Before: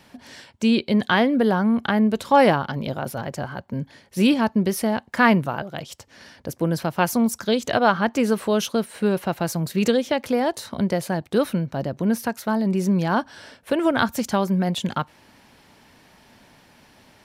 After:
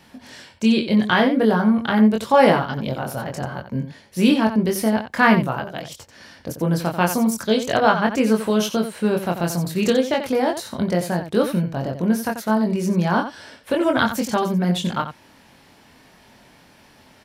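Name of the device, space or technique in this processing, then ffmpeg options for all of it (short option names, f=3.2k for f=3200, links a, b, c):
slapback doubling: -filter_complex "[0:a]asplit=3[a][b][c];[b]adelay=23,volume=-3.5dB[d];[c]adelay=89,volume=-9.5dB[e];[a][d][e]amix=inputs=3:normalize=0"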